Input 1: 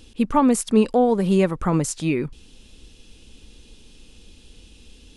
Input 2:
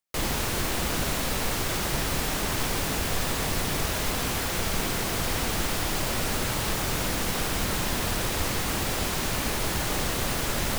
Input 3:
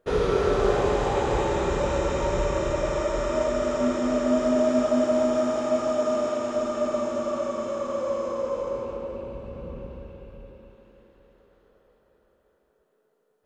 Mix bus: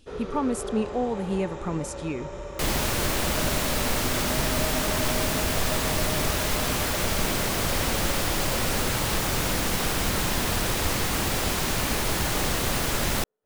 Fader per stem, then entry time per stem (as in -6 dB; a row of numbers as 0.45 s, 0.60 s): -9.5 dB, +2.0 dB, -12.0 dB; 0.00 s, 2.45 s, 0.00 s